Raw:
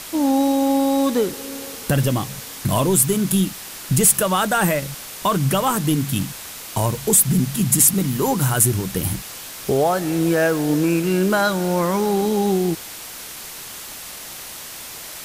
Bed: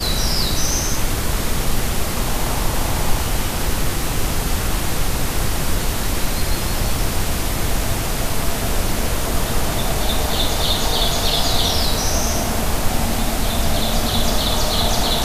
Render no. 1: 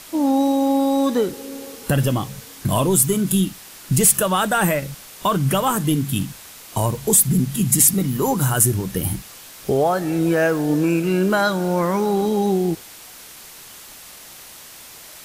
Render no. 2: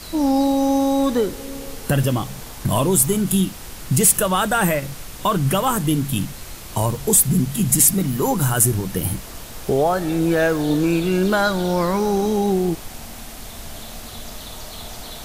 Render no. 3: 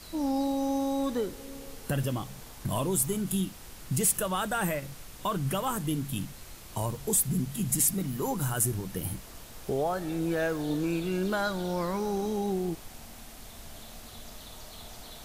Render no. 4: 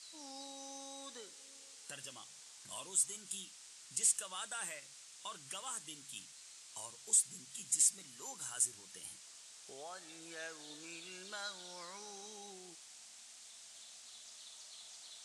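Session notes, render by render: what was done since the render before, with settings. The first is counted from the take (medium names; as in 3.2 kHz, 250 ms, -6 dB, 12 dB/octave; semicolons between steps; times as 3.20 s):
noise print and reduce 6 dB
add bed -17.5 dB
trim -11 dB
steep low-pass 8.5 kHz 36 dB/octave; differentiator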